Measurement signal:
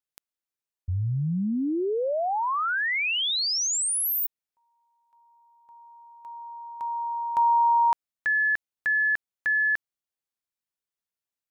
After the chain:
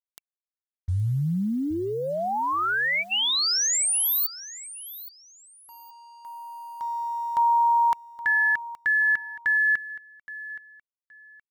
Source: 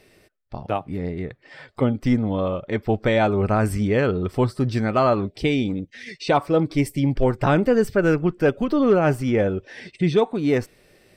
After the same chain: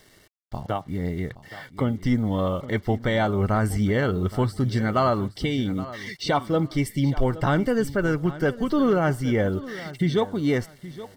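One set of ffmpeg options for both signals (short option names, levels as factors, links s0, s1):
-filter_complex "[0:a]equalizer=f=460:w=0.76:g=-5,acrusher=bits=8:mix=0:aa=0.5,alimiter=limit=0.188:level=0:latency=1:release=377,asuperstop=centerf=2500:order=12:qfactor=6.5,asplit=2[s0][s1];[s1]aecho=0:1:821|1642:0.158|0.0365[s2];[s0][s2]amix=inputs=2:normalize=0,volume=1.33"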